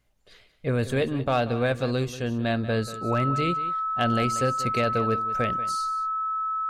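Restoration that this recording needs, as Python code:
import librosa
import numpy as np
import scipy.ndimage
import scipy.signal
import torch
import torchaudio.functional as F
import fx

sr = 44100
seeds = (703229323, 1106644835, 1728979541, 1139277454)

y = fx.fix_declip(x, sr, threshold_db=-13.5)
y = fx.notch(y, sr, hz=1300.0, q=30.0)
y = fx.fix_echo_inverse(y, sr, delay_ms=185, level_db=-14.5)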